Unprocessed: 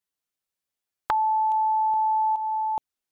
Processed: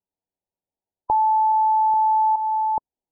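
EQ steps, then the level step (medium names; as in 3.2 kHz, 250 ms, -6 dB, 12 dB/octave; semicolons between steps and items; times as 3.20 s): brick-wall FIR low-pass 1 kHz; +4.5 dB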